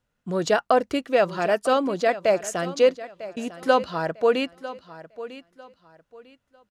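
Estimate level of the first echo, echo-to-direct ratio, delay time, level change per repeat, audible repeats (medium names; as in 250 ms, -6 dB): -15.5 dB, -15.0 dB, 949 ms, -11.5 dB, 2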